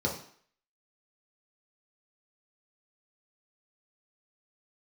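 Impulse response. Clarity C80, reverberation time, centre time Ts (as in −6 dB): 11.0 dB, 0.55 s, 26 ms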